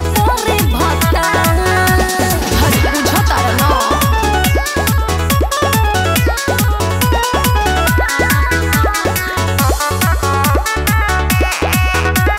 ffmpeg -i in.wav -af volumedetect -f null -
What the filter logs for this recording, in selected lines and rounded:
mean_volume: -12.7 dB
max_volume: -4.1 dB